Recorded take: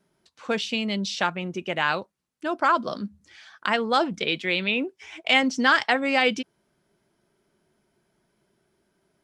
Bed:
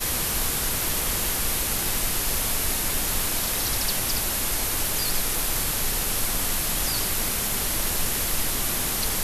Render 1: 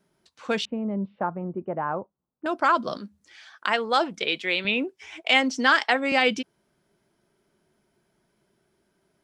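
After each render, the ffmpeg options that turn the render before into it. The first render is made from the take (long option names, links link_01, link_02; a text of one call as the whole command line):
ffmpeg -i in.wav -filter_complex "[0:a]asettb=1/sr,asplit=3[link_01][link_02][link_03];[link_01]atrim=end=0.654[link_04];[link_02]atrim=start=0.65:end=2.46,asetpts=PTS-STARTPTS,afade=type=in:duration=0.004:curve=qsin,afade=type=out:start_time=1.806:duration=0.004:curve=qsin,lowpass=frequency=1100:width=0.5412,lowpass=frequency=1100:width=1.3066[link_05];[link_03]atrim=start=2.456[link_06];[link_04][link_05]acrossfade=duration=0.004:curve1=hsin:curve2=qsin[link_07];[link_07][link_06]acrossfade=duration=0.004:curve1=qsin:curve2=hsin,asettb=1/sr,asplit=3[link_08][link_09][link_10];[link_08]atrim=end=2.974[link_11];[link_09]atrim=start=2.97:end=4.65,asetpts=PTS-STARTPTS,afade=type=in:duration=0.004:curve=qsin,afade=type=out:start_time=1.676:duration=0.004:curve=qsin,bass=frequency=250:gain=-11,treble=frequency=4000:gain=0[link_12];[link_10]atrim=start=4.646[link_13];[link_11][link_12]acrossfade=duration=0.004:curve1=hsin:curve2=qsin[link_14];[link_14][link_13]acrossfade=duration=0.004:curve1=qsin:curve2=hsin,asettb=1/sr,asplit=3[link_15][link_16][link_17];[link_15]atrim=end=5.234[link_18];[link_16]atrim=start=5.23:end=6.12,asetpts=PTS-STARTPTS,afade=type=in:duration=0.004:curve=qsin,afade=type=out:start_time=0.886:duration=0.004:curve=qsin,highpass=frequency=240:width=0.5412,highpass=frequency=240:width=1.3066[link_19];[link_17]atrim=start=6.116[link_20];[link_18][link_19]acrossfade=duration=0.004:curve1=hsin:curve2=qsin[link_21];[link_21][link_20]acrossfade=duration=0.004:curve1=qsin:curve2=hsin" out.wav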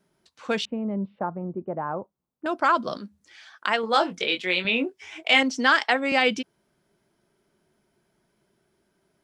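ffmpeg -i in.wav -filter_complex "[0:a]asettb=1/sr,asplit=3[link_01][link_02][link_03];[link_01]atrim=end=1.194[link_04];[link_02]atrim=start=1.19:end=2,asetpts=PTS-STARTPTS,afade=type=in:duration=0.004:curve=qsin,afade=type=out:start_time=0.806:duration=0.004:curve=qsin,lowpass=frequency=1200:poles=1[link_05];[link_03]atrim=start=1.996[link_06];[link_04][link_05]acrossfade=duration=0.004:curve1=hsin:curve2=qsin[link_07];[link_07][link_06]acrossfade=duration=0.004:curve1=qsin:curve2=hsin,asettb=1/sr,asplit=3[link_08][link_09][link_10];[link_08]atrim=end=3.814[link_11];[link_09]atrim=start=3.81:end=5.43,asetpts=PTS-STARTPTS,afade=type=in:duration=0.004:curve=qsin,afade=type=out:start_time=1.616:duration=0.004:curve=qsin,asplit=2[link_12][link_13];[link_13]adelay=22,volume=-5.5dB[link_14];[link_12][link_14]amix=inputs=2:normalize=0,atrim=end_sample=71442[link_15];[link_10]atrim=start=5.426[link_16];[link_11][link_15]acrossfade=duration=0.004:curve1=hsin:curve2=qsin[link_17];[link_17][link_16]acrossfade=duration=0.004:curve1=qsin:curve2=hsin" out.wav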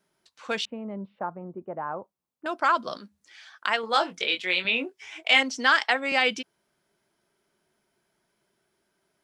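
ffmpeg -i in.wav -af "lowshelf=frequency=470:gain=-9.5" out.wav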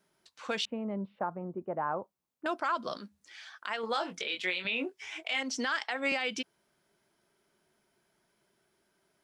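ffmpeg -i in.wav -af "acompressor=threshold=-23dB:ratio=6,alimiter=limit=-21dB:level=0:latency=1:release=102" out.wav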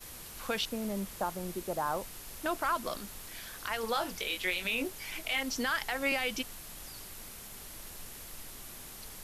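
ffmpeg -i in.wav -i bed.wav -filter_complex "[1:a]volume=-21dB[link_01];[0:a][link_01]amix=inputs=2:normalize=0" out.wav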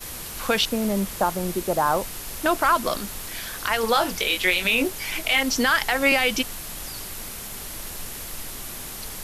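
ffmpeg -i in.wav -af "volume=11.5dB" out.wav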